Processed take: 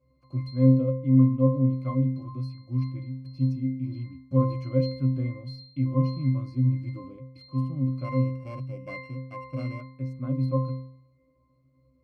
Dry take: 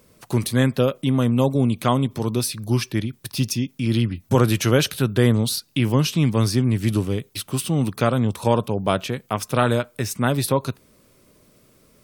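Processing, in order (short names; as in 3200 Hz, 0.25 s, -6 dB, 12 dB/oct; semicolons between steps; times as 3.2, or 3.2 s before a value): 8.04–9.81 sample sorter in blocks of 16 samples; octave resonator C, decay 0.6 s; gain +6 dB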